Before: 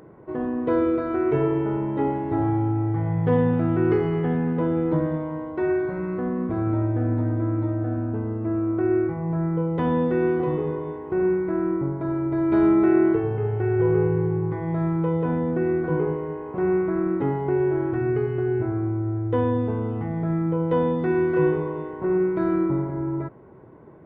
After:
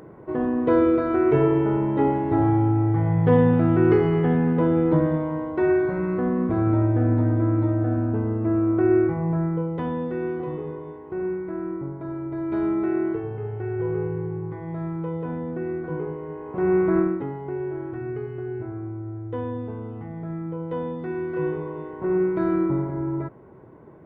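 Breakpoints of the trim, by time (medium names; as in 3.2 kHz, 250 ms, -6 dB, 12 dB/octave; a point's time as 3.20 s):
9.22 s +3 dB
9.96 s -6 dB
16.13 s -6 dB
16.98 s +5 dB
17.27 s -7.5 dB
21.21 s -7.5 dB
22.20 s 0 dB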